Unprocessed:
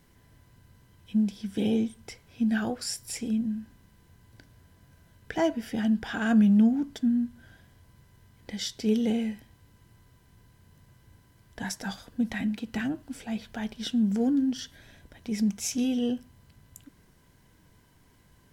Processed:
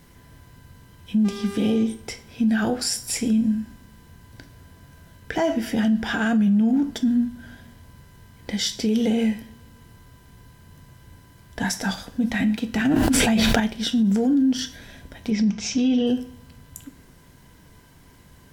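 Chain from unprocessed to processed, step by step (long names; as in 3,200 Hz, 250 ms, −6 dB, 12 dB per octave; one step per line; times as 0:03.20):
0:01.24–0:01.82: hum with harmonics 400 Hz, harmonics 22, −42 dBFS −8 dB per octave
0:15.30–0:16.07: low-pass filter 5,200 Hz 24 dB per octave
coupled-rooms reverb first 0.41 s, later 2 s, from −25 dB, DRR 9.5 dB
boost into a limiter +22 dB
0:12.85–0:13.60: envelope flattener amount 100%
level −13 dB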